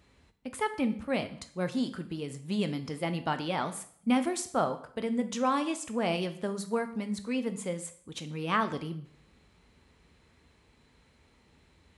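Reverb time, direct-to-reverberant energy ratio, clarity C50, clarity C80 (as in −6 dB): 0.60 s, 9.0 dB, 13.5 dB, 16.5 dB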